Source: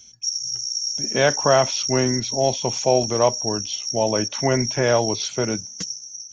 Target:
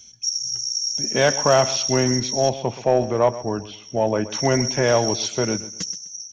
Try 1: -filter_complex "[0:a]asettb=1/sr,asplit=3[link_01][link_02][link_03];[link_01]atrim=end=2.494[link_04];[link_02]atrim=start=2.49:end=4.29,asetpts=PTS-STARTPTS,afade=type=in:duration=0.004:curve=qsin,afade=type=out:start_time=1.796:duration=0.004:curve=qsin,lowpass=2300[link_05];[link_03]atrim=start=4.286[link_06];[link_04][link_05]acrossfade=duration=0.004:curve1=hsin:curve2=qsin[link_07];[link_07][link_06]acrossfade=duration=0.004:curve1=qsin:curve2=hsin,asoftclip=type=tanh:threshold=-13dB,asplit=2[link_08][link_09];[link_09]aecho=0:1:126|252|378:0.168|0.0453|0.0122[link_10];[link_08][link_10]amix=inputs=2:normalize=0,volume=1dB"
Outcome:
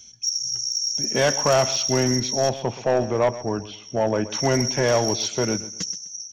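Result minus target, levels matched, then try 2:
soft clipping: distortion +10 dB
-filter_complex "[0:a]asettb=1/sr,asplit=3[link_01][link_02][link_03];[link_01]atrim=end=2.494[link_04];[link_02]atrim=start=2.49:end=4.29,asetpts=PTS-STARTPTS,afade=type=in:duration=0.004:curve=qsin,afade=type=out:start_time=1.796:duration=0.004:curve=qsin,lowpass=2300[link_05];[link_03]atrim=start=4.286[link_06];[link_04][link_05]acrossfade=duration=0.004:curve1=hsin:curve2=qsin[link_07];[link_07][link_06]acrossfade=duration=0.004:curve1=qsin:curve2=hsin,asoftclip=type=tanh:threshold=-5.5dB,asplit=2[link_08][link_09];[link_09]aecho=0:1:126|252|378:0.168|0.0453|0.0122[link_10];[link_08][link_10]amix=inputs=2:normalize=0,volume=1dB"

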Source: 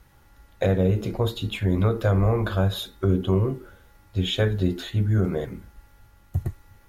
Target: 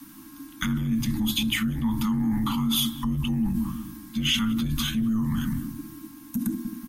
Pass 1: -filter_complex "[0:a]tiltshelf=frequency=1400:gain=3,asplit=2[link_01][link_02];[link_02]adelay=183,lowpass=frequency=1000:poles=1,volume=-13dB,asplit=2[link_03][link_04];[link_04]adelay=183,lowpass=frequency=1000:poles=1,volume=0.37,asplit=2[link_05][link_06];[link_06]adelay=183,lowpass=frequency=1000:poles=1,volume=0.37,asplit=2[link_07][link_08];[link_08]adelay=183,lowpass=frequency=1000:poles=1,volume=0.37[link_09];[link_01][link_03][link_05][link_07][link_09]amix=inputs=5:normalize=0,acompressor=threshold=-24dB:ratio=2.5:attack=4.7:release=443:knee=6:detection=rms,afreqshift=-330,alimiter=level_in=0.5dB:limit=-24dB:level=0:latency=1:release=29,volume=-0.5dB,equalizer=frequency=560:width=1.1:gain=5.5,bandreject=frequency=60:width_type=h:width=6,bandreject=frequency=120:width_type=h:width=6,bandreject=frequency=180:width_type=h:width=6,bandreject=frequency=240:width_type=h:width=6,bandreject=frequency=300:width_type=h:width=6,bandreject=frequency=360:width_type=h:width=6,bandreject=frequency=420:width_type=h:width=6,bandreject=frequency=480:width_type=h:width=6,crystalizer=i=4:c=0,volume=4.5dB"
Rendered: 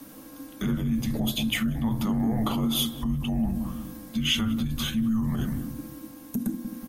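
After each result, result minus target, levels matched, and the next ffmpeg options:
500 Hz band +10.5 dB; downward compressor: peak gain reduction +9 dB
-filter_complex "[0:a]asuperstop=centerf=650:order=20:qfactor=0.79,tiltshelf=frequency=1400:gain=3,asplit=2[link_01][link_02];[link_02]adelay=183,lowpass=frequency=1000:poles=1,volume=-13dB,asplit=2[link_03][link_04];[link_04]adelay=183,lowpass=frequency=1000:poles=1,volume=0.37,asplit=2[link_05][link_06];[link_06]adelay=183,lowpass=frequency=1000:poles=1,volume=0.37,asplit=2[link_07][link_08];[link_08]adelay=183,lowpass=frequency=1000:poles=1,volume=0.37[link_09];[link_01][link_03][link_05][link_07][link_09]amix=inputs=5:normalize=0,acompressor=threshold=-24dB:ratio=2.5:attack=4.7:release=443:knee=6:detection=rms,afreqshift=-330,alimiter=level_in=0.5dB:limit=-24dB:level=0:latency=1:release=29,volume=-0.5dB,equalizer=frequency=560:width=1.1:gain=5.5,bandreject=frequency=60:width_type=h:width=6,bandreject=frequency=120:width_type=h:width=6,bandreject=frequency=180:width_type=h:width=6,bandreject=frequency=240:width_type=h:width=6,bandreject=frequency=300:width_type=h:width=6,bandreject=frequency=360:width_type=h:width=6,bandreject=frequency=420:width_type=h:width=6,bandreject=frequency=480:width_type=h:width=6,crystalizer=i=4:c=0,volume=4.5dB"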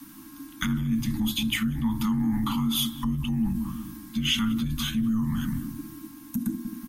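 downward compressor: peak gain reduction +8.5 dB
-filter_complex "[0:a]asuperstop=centerf=650:order=20:qfactor=0.79,tiltshelf=frequency=1400:gain=3,asplit=2[link_01][link_02];[link_02]adelay=183,lowpass=frequency=1000:poles=1,volume=-13dB,asplit=2[link_03][link_04];[link_04]adelay=183,lowpass=frequency=1000:poles=1,volume=0.37,asplit=2[link_05][link_06];[link_06]adelay=183,lowpass=frequency=1000:poles=1,volume=0.37,asplit=2[link_07][link_08];[link_08]adelay=183,lowpass=frequency=1000:poles=1,volume=0.37[link_09];[link_01][link_03][link_05][link_07][link_09]amix=inputs=5:normalize=0,afreqshift=-330,alimiter=level_in=0.5dB:limit=-24dB:level=0:latency=1:release=29,volume=-0.5dB,equalizer=frequency=560:width=1.1:gain=5.5,bandreject=frequency=60:width_type=h:width=6,bandreject=frequency=120:width_type=h:width=6,bandreject=frequency=180:width_type=h:width=6,bandreject=frequency=240:width_type=h:width=6,bandreject=frequency=300:width_type=h:width=6,bandreject=frequency=360:width_type=h:width=6,bandreject=frequency=420:width_type=h:width=6,bandreject=frequency=480:width_type=h:width=6,crystalizer=i=4:c=0,volume=4.5dB"

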